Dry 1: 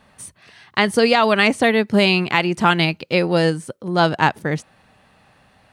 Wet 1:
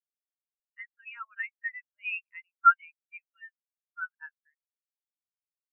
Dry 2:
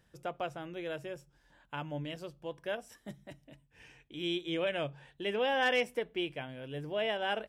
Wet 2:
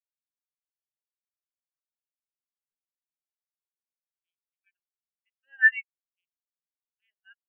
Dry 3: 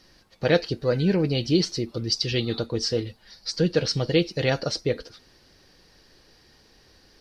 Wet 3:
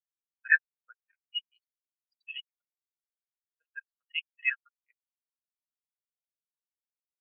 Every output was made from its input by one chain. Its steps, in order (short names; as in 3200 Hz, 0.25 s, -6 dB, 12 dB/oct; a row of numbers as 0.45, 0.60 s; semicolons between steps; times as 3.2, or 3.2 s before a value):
Chebyshev band-pass 1300–2800 Hz, order 2; in parallel at -3 dB: limiter -14.5 dBFS; on the sum: bit-crush 5-bit; spectral expander 4:1; normalise peaks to -9 dBFS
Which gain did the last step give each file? -6.5, +8.5, +0.5 dB